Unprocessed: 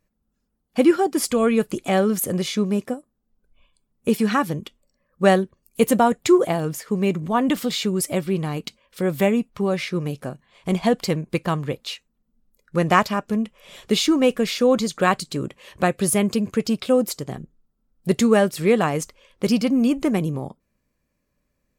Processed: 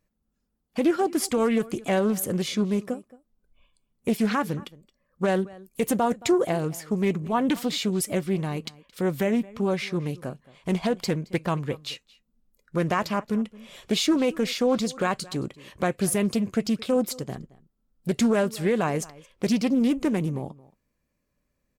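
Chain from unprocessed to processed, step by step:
brickwall limiter −10.5 dBFS, peak gain reduction 8.5 dB
slap from a distant wall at 38 metres, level −21 dB
highs frequency-modulated by the lows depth 0.23 ms
level −3 dB

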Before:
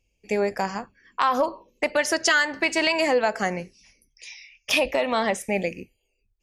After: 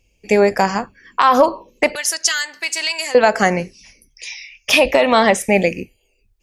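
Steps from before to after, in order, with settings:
0:01.95–0:03.15: first-order pre-emphasis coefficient 0.97
boost into a limiter +11.5 dB
level −1 dB

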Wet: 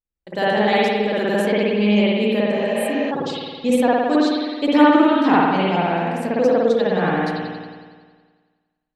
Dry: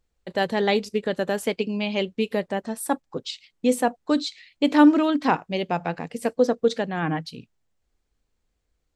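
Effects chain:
noise gate with hold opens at −42 dBFS
spring reverb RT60 1.6 s, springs 53 ms, chirp 40 ms, DRR −8 dB
healed spectral selection 0:02.56–0:03.08, 470–7,100 Hz before
every ending faded ahead of time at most 120 dB per second
level −1.5 dB

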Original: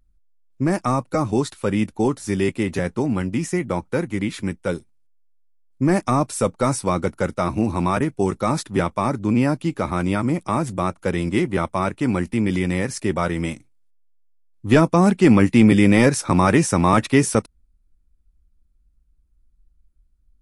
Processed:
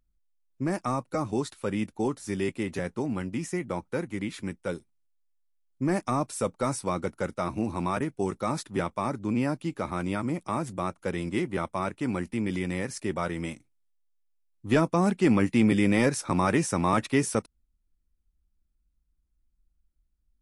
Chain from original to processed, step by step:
low-shelf EQ 110 Hz −5.5 dB
level −7.5 dB

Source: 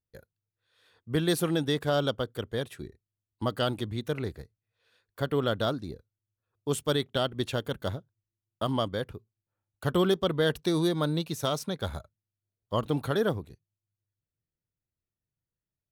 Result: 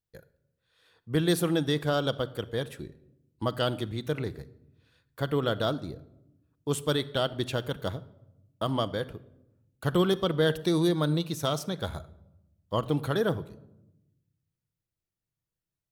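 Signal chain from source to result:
rectangular room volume 3,000 cubic metres, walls furnished, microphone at 0.65 metres

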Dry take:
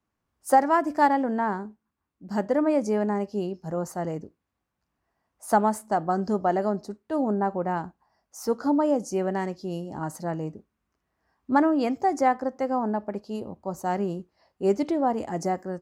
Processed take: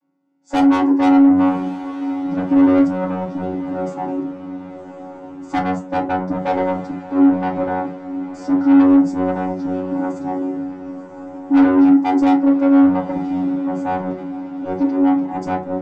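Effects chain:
channel vocoder with a chord as carrier bare fifth, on F#3
0:14.10–0:15.31: Chebyshev low-pass with heavy ripple 6,200 Hz, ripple 6 dB
soft clipping −28 dBFS, distortion −7 dB
feedback delay with all-pass diffusion 1,104 ms, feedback 55%, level −12.5 dB
feedback delay network reverb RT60 0.35 s, low-frequency decay 0.8×, high-frequency decay 0.5×, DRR −4 dB
level +7 dB

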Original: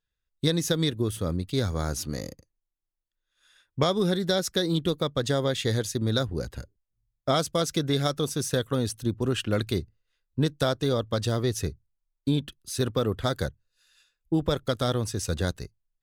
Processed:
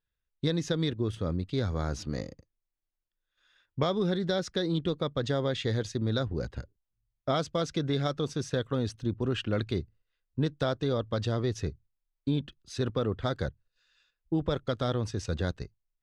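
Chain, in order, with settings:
in parallel at +2 dB: output level in coarse steps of 18 dB
on the sum: high-frequency loss of the air 140 metres
level −5.5 dB

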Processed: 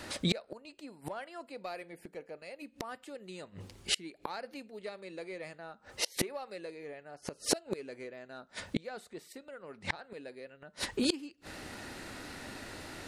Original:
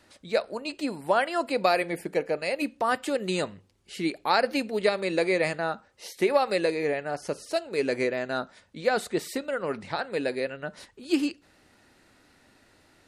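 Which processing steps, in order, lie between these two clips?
in parallel at −4 dB: soft clipping −21 dBFS, distortion −12 dB
on the sum: gate with flip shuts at −26 dBFS, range −32 dB
level +10.5 dB

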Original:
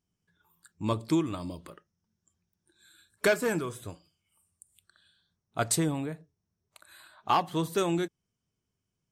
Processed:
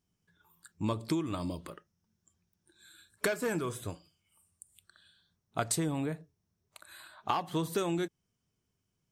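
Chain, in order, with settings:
downward compressor 6 to 1, threshold −30 dBFS, peak gain reduction 10.5 dB
level +2 dB

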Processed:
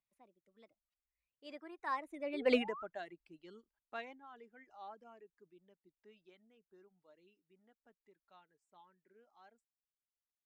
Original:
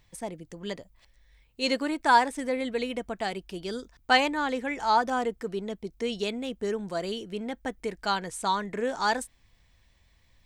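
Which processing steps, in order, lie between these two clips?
source passing by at 0:02.55, 36 m/s, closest 2 metres
three-way crossover with the lows and the highs turned down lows −13 dB, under 180 Hz, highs −14 dB, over 3,400 Hz
in parallel at −6.5 dB: gain into a clipping stage and back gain 26 dB
on the sum: sound drawn into the spectrogram rise, 0:02.33–0:02.84, 350–1,400 Hz −48 dBFS
reverb reduction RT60 1.1 s
level +1 dB

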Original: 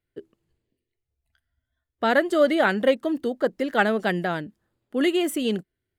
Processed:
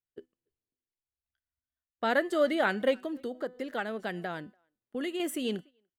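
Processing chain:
low-shelf EQ 260 Hz −3.5 dB
tuned comb filter 250 Hz, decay 0.48 s, harmonics all, mix 40%
far-end echo of a speakerphone 290 ms, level −26 dB
noise gate −46 dBFS, range −12 dB
0:03.03–0:05.20: downward compressor 2.5 to 1, threshold −31 dBFS, peak gain reduction 8.5 dB
level −2 dB

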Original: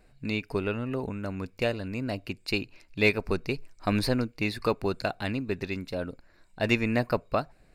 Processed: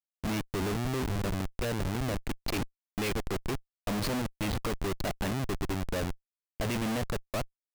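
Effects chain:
comparator with hysteresis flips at −32 dBFS
noise gate −49 dBFS, range −9 dB

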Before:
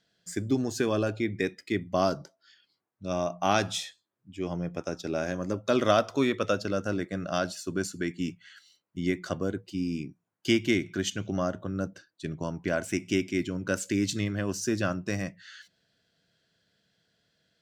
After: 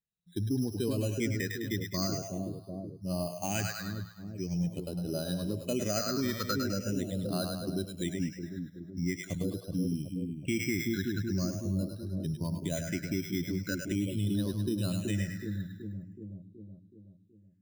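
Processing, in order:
spectral dynamics exaggerated over time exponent 1.5
bad sample-rate conversion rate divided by 8×, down filtered, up hold
low-shelf EQ 290 Hz +9 dB
echo with a time of its own for lows and highs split 550 Hz, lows 374 ms, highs 103 ms, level −6 dB
all-pass phaser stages 6, 0.43 Hz, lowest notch 730–2,100 Hz
in parallel at −3 dB: downward compressor, threshold −39 dBFS, peak gain reduction 20.5 dB
on the sum: brickwall limiter −18.5 dBFS, peak gain reduction 9 dB
tilt shelving filter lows −4.5 dB, about 1,400 Hz

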